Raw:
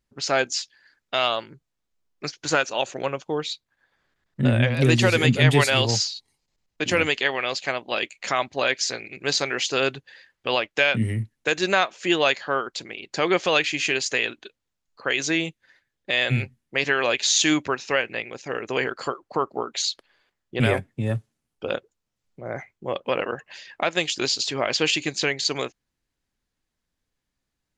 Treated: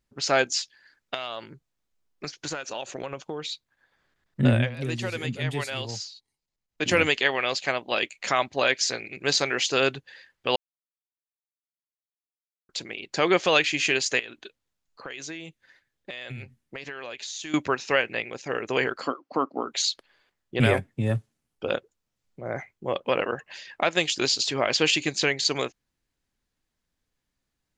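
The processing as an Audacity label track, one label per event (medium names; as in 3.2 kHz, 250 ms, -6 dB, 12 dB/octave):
1.140000	3.530000	compression, threshold -29 dBFS
4.530000	6.860000	dip -12 dB, fades 0.18 s
10.560000	12.690000	mute
14.190000	17.540000	compression 5:1, threshold -35 dBFS
19.010000	19.660000	cabinet simulation 210–5800 Hz, peaks and dips at 270 Hz +10 dB, 400 Hz -6 dB, 890 Hz -3 dB, 1.7 kHz -4 dB, 3.7 kHz -4 dB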